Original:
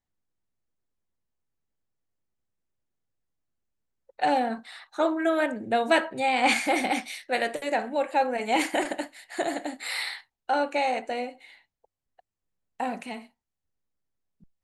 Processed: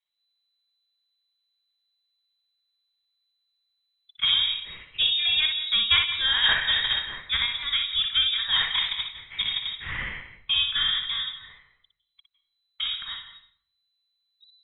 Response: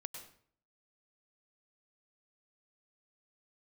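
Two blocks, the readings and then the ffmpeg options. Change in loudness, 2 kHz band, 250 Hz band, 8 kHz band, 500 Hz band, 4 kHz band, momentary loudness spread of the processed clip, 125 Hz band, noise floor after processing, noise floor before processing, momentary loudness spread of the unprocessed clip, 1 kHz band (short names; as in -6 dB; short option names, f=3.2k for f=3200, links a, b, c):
+4.0 dB, +1.5 dB, under -20 dB, under -40 dB, -25.5 dB, +16.5 dB, 12 LU, n/a, -78 dBFS, under -85 dBFS, 13 LU, -13.5 dB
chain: -filter_complex "[0:a]lowpass=f=3.4k:t=q:w=0.5098,lowpass=f=3.4k:t=q:w=0.6013,lowpass=f=3.4k:t=q:w=0.9,lowpass=f=3.4k:t=q:w=2.563,afreqshift=-4000,asplit=2[a][b];[1:a]atrim=start_sample=2205,adelay=60[c];[b][c]afir=irnorm=-1:irlink=0,volume=-1.5dB[d];[a][d]amix=inputs=2:normalize=0,asubboost=boost=7:cutoff=120"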